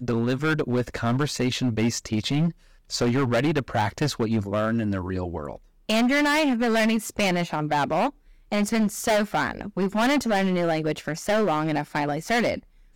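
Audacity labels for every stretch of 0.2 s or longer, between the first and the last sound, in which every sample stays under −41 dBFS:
2.520000	2.900000	silence
5.570000	5.890000	silence
8.100000	8.520000	silence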